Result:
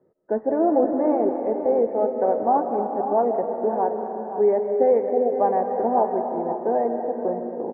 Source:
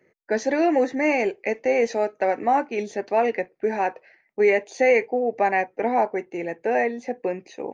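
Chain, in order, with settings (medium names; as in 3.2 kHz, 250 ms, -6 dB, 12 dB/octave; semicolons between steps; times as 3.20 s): steep low-pass 1.2 kHz 36 dB/octave; delay 524 ms -11 dB; on a send at -5 dB: reverberation RT60 2.9 s, pre-delay 105 ms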